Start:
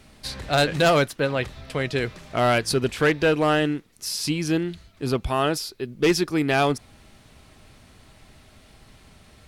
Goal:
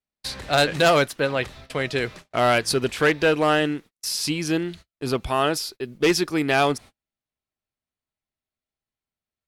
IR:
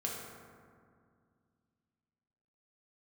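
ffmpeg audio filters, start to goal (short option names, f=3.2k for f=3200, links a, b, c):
-af "agate=range=-42dB:threshold=-39dB:ratio=16:detection=peak,lowshelf=f=250:g=-6.5,volume=2dB"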